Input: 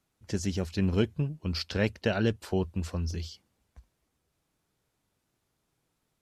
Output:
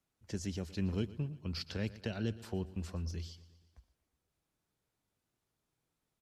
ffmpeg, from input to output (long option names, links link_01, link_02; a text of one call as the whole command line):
ffmpeg -i in.wav -filter_complex "[0:a]acrossover=split=320|3000[link_01][link_02][link_03];[link_02]acompressor=threshold=-35dB:ratio=6[link_04];[link_01][link_04][link_03]amix=inputs=3:normalize=0,asplit=2[link_05][link_06];[link_06]aecho=0:1:118|236|354|472|590:0.126|0.0718|0.0409|0.0233|0.0133[link_07];[link_05][link_07]amix=inputs=2:normalize=0,volume=-7.5dB" out.wav